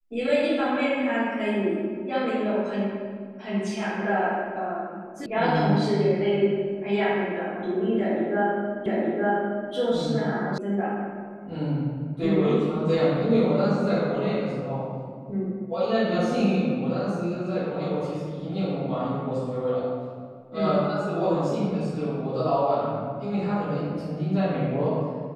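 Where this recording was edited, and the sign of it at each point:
0:05.26: cut off before it has died away
0:08.86: the same again, the last 0.87 s
0:10.58: cut off before it has died away

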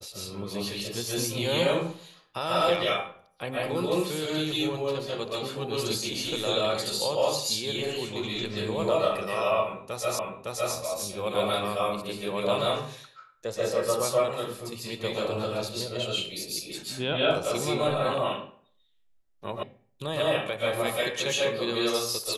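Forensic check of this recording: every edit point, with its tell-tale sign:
0:10.19: the same again, the last 0.56 s
0:19.63: cut off before it has died away

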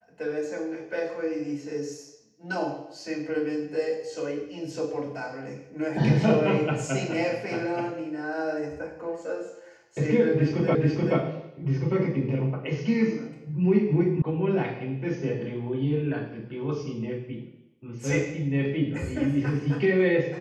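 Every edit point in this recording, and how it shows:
0:10.75: the same again, the last 0.43 s
0:14.22: cut off before it has died away

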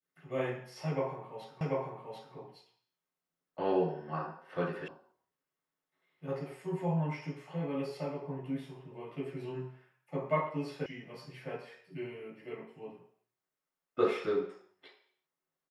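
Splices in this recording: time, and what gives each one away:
0:01.61: the same again, the last 0.74 s
0:04.88: cut off before it has died away
0:10.86: cut off before it has died away

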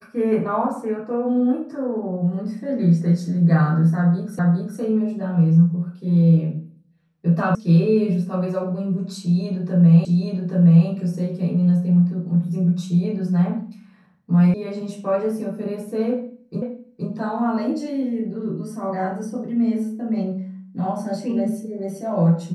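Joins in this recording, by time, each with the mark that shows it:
0:04.39: the same again, the last 0.41 s
0:07.55: cut off before it has died away
0:10.05: the same again, the last 0.82 s
0:14.54: cut off before it has died away
0:16.62: the same again, the last 0.47 s

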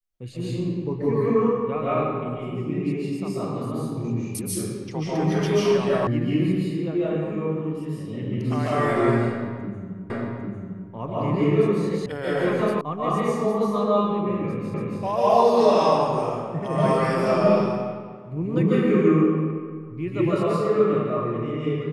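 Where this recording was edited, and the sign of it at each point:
0:06.07: cut off before it has died away
0:10.10: the same again, the last 0.8 s
0:12.06: cut off before it has died away
0:12.81: cut off before it has died away
0:14.74: the same again, the last 0.28 s

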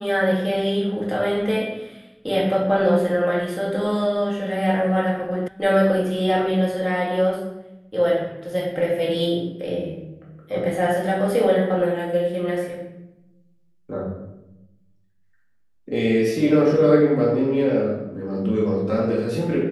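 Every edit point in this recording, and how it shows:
0:05.48: cut off before it has died away

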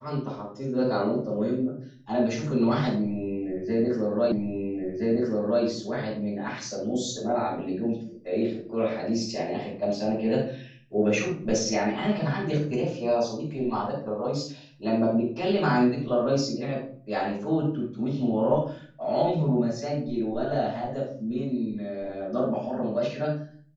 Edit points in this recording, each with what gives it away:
0:04.32: the same again, the last 1.32 s

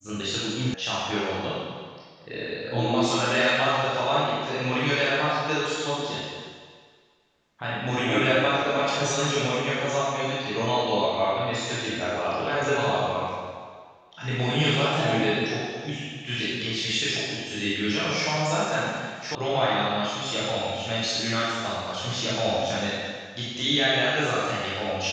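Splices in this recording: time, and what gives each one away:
0:00.74: cut off before it has died away
0:19.35: cut off before it has died away

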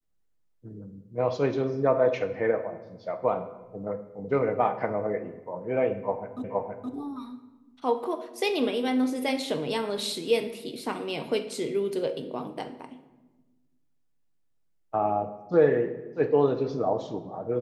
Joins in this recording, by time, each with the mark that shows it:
0:06.44: the same again, the last 0.47 s

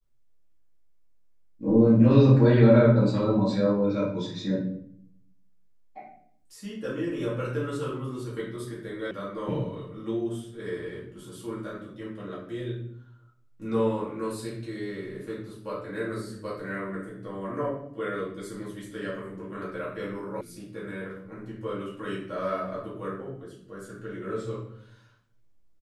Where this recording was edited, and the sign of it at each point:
0:09.11: cut off before it has died away
0:20.41: cut off before it has died away

